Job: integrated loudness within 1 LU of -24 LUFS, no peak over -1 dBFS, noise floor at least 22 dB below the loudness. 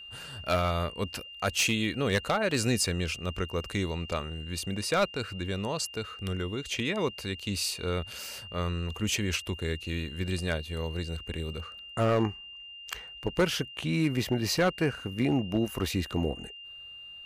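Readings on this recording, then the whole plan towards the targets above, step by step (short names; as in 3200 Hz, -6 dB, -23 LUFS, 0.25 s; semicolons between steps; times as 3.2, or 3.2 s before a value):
clipped 0.3%; flat tops at -18.5 dBFS; steady tone 2800 Hz; tone level -43 dBFS; loudness -30.5 LUFS; peak -18.5 dBFS; loudness target -24.0 LUFS
-> clip repair -18.5 dBFS; notch 2800 Hz, Q 30; gain +6.5 dB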